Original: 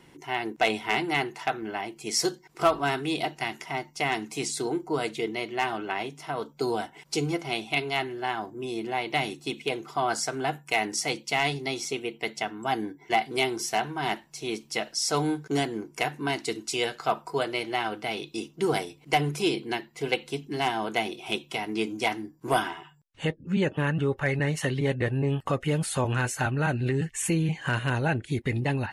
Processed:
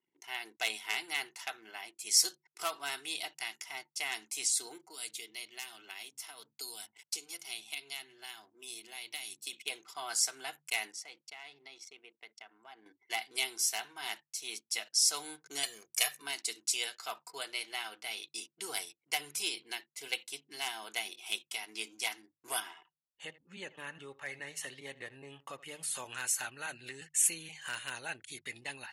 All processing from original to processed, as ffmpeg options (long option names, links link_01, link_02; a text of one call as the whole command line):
ffmpeg -i in.wav -filter_complex "[0:a]asettb=1/sr,asplit=3[link_01][link_02][link_03];[link_01]atrim=end=4.874[link_04];[link_02]atrim=start=4.87:end=9.53,asetpts=PTS-STARTPTS,afade=type=in:duration=0.004:curve=qsin,afade=type=out:start_time=4.656:duration=0.004:curve=qsin,highshelf=frequency=10000:gain=7.5,acrossover=split=290|2600[link_05][link_06][link_07];[link_05]acompressor=threshold=-37dB:ratio=4[link_08];[link_06]acompressor=threshold=-39dB:ratio=4[link_09];[link_07]acompressor=threshold=-37dB:ratio=4[link_10];[link_08][link_09][link_10]amix=inputs=3:normalize=0,acrossover=split=160[link_11][link_12];[link_11]adelay=100[link_13];[link_13][link_12]amix=inputs=2:normalize=0,atrim=end_sample=205506[link_14];[link_03]atrim=start=9.526[link_15];[link_04][link_14]acrossfade=duration=0.004:curve1=hsin:curve2=qsin[link_16];[link_16][link_15]acrossfade=duration=0.004:curve1=qsin:curve2=hsin,asettb=1/sr,asplit=3[link_17][link_18][link_19];[link_17]atrim=end=10.924[link_20];[link_18]atrim=start=10.92:end=12.86,asetpts=PTS-STARTPTS,afade=type=in:duration=0.004:curve=qsin,afade=type=out:start_time=1.936:duration=0.004:curve=qsin,lowpass=frequency=1000:poles=1,lowshelf=frequency=470:gain=-7.5,acompressor=threshold=-36dB:ratio=2.5:attack=3.2:release=140:knee=1:detection=peak[link_21];[link_19]atrim=start=12.856[link_22];[link_20][link_21]acrossfade=duration=0.004:curve1=hsin:curve2=qsin[link_23];[link_23][link_22]acrossfade=duration=0.004:curve1=qsin:curve2=hsin,asettb=1/sr,asplit=3[link_24][link_25][link_26];[link_24]atrim=end=15.634[link_27];[link_25]atrim=start=15.63:end=16.22,asetpts=PTS-STARTPTS,afade=type=in:duration=0.004:curve=qsin,afade=type=out:start_time=0.586:duration=0.004:curve=qsin,highshelf=frequency=2600:gain=8.5,aecho=1:1:1.7:0.76,atrim=end_sample=26019[link_28];[link_26]atrim=start=16.216[link_29];[link_27][link_28]acrossfade=duration=0.004:curve1=hsin:curve2=qsin[link_30];[link_30][link_29]acrossfade=duration=0.004:curve1=qsin:curve2=hsin,asettb=1/sr,asplit=3[link_31][link_32][link_33];[link_31]atrim=end=22.604[link_34];[link_32]atrim=start=22.6:end=25.95,asetpts=PTS-STARTPTS,afade=type=in:duration=0.004:curve=qsin,afade=type=out:start_time=3.346:duration=0.004:curve=qsin,highshelf=frequency=2200:gain=-7.5,bandreject=frequency=1500:width=15,aecho=1:1:80:0.119,atrim=end_sample=147735[link_35];[link_33]atrim=start=25.946[link_36];[link_34][link_35]acrossfade=duration=0.004:curve1=hsin:curve2=qsin[link_37];[link_37][link_36]acrossfade=duration=0.004:curve1=qsin:curve2=hsin,anlmdn=0.01,aderivative,bandreject=frequency=50:width_type=h:width=6,bandreject=frequency=100:width_type=h:width=6,bandreject=frequency=150:width_type=h:width=6,volume=3dB" out.wav